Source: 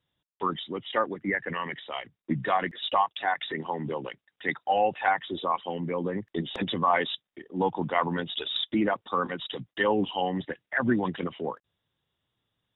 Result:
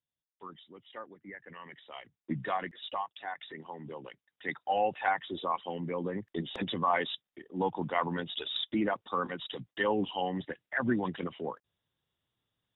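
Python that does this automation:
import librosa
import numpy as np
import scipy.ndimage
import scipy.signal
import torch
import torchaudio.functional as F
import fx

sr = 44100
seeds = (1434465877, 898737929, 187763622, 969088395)

y = fx.gain(x, sr, db=fx.line((1.4, -18.0), (2.36, -5.5), (3.05, -12.0), (3.77, -12.0), (4.78, -4.5)))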